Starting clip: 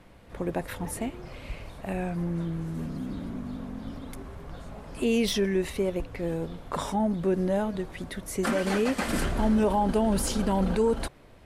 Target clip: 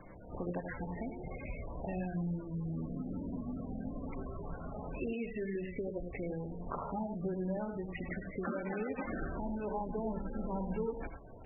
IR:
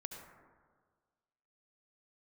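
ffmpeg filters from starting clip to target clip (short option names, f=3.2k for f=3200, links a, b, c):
-filter_complex "[0:a]bandreject=f=50:t=h:w=6,bandreject=f=100:t=h:w=6,bandreject=f=150:t=h:w=6,bandreject=f=200:t=h:w=6,acompressor=threshold=-39dB:ratio=4[a];[1:a]atrim=start_sample=2205,atrim=end_sample=4410,asetrate=38808,aresample=44100[b];[a][b]afir=irnorm=-1:irlink=0,volume=5.5dB" -ar 24000 -c:a libmp3lame -b:a 8k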